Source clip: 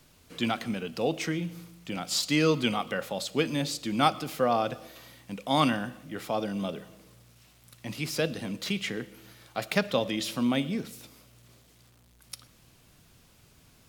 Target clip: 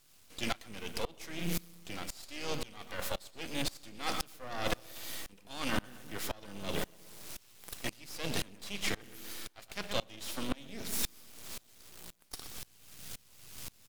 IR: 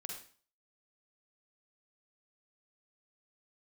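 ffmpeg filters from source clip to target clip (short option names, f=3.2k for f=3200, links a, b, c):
-filter_complex "[0:a]highshelf=f=2.3k:g=12,bandreject=f=60:t=h:w=6,bandreject=f=120:t=h:w=6,bandreject=f=180:t=h:w=6,bandreject=f=240:t=h:w=6,areverse,acompressor=threshold=-37dB:ratio=10,areverse,asplit=3[a][b][c];[b]asetrate=35002,aresample=44100,atempo=1.25992,volume=-17dB[d];[c]asetrate=52444,aresample=44100,atempo=0.840896,volume=-16dB[e];[a][d][e]amix=inputs=3:normalize=0,aeval=exprs='max(val(0),0)':c=same,asplit=2[f][g];[g]adelay=122,lowpass=f=2.9k:p=1,volume=-11dB,asplit=2[h][i];[i]adelay=122,lowpass=f=2.9k:p=1,volume=0.47,asplit=2[j][k];[k]adelay=122,lowpass=f=2.9k:p=1,volume=0.47,asplit=2[l][m];[m]adelay=122,lowpass=f=2.9k:p=1,volume=0.47,asplit=2[n][o];[o]adelay=122,lowpass=f=2.9k:p=1,volume=0.47[p];[h][j][l][n][p]amix=inputs=5:normalize=0[q];[f][q]amix=inputs=2:normalize=0,aeval=exprs='val(0)*pow(10,-26*if(lt(mod(-1.9*n/s,1),2*abs(-1.9)/1000),1-mod(-1.9*n/s,1)/(2*abs(-1.9)/1000),(mod(-1.9*n/s,1)-2*abs(-1.9)/1000)/(1-2*abs(-1.9)/1000))/20)':c=same,volume=13.5dB"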